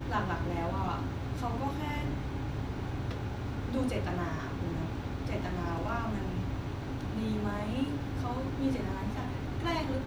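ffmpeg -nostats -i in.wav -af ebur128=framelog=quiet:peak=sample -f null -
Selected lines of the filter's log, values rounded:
Integrated loudness:
  I:         -34.7 LUFS
  Threshold: -44.7 LUFS
Loudness range:
  LRA:         1.1 LU
  Threshold: -54.9 LUFS
  LRA low:   -35.4 LUFS
  LRA high:  -34.3 LUFS
Sample peak:
  Peak:      -17.9 dBFS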